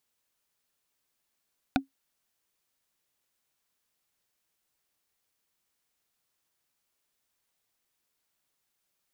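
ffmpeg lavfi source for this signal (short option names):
-f lavfi -i "aevalsrc='0.126*pow(10,-3*t/0.13)*sin(2*PI*271*t)+0.119*pow(10,-3*t/0.038)*sin(2*PI*747.1*t)+0.112*pow(10,-3*t/0.017)*sin(2*PI*1464.5*t)+0.106*pow(10,-3*t/0.009)*sin(2*PI*2420.8*t)+0.1*pow(10,-3*t/0.006)*sin(2*PI*3615.1*t)':d=0.45:s=44100"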